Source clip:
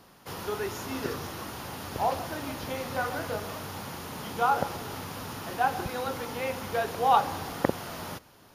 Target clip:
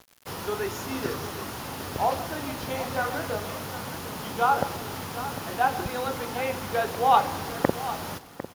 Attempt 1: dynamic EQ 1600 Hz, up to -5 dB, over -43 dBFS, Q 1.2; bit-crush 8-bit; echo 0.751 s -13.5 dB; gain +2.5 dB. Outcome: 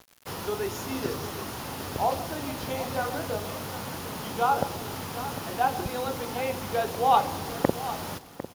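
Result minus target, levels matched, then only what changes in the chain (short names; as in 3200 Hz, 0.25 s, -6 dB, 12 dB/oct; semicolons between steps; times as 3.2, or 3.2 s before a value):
2000 Hz band -2.5 dB
remove: dynamic EQ 1600 Hz, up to -5 dB, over -43 dBFS, Q 1.2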